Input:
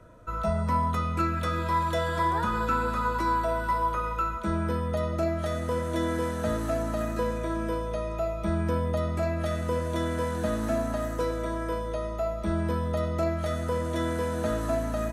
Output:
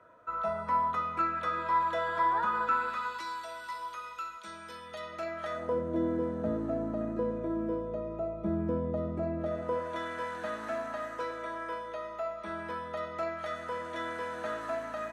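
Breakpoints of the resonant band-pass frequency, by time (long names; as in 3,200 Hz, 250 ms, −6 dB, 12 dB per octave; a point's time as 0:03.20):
resonant band-pass, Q 0.89
0:02.62 1,200 Hz
0:03.31 4,600 Hz
0:04.69 4,600 Hz
0:05.52 1,400 Hz
0:05.84 310 Hz
0:09.35 310 Hz
0:10.03 1,600 Hz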